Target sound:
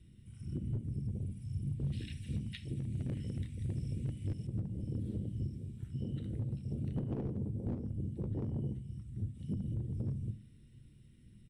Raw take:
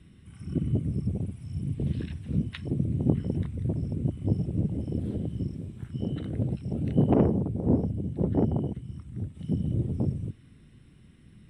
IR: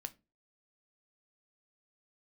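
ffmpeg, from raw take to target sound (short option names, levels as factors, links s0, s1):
-filter_complex "[0:a]equalizer=f=1000:w=0.53:g=-14[s0];[1:a]atrim=start_sample=2205[s1];[s0][s1]afir=irnorm=-1:irlink=0,aeval=exprs='clip(val(0),-1,0.0473)':c=same,asettb=1/sr,asplit=3[s2][s3][s4];[s2]atrim=end=1.924[s5];[s3]atrim=start=1.92:end=4.47,asetpts=PTS-STARTPTS,afade=t=in:d=0.004:c=qsin,afade=t=out:st=2.546:d=0.004:c=qsin,highshelf=f=1500:t=q:w=1.5:g=9.5[s6];[s4]atrim=start=4.466[s7];[s5][s6]acrossfade=d=0.004:c1=hsin:c2=qsin[s8];[s8][s7]acrossfade=d=0.004:c1=qsin:c2=hsin,alimiter=level_in=1.68:limit=0.0631:level=0:latency=1:release=344,volume=0.596,aecho=1:1:74|148|222|296|370:0.0891|0.0517|0.03|0.0174|0.0101"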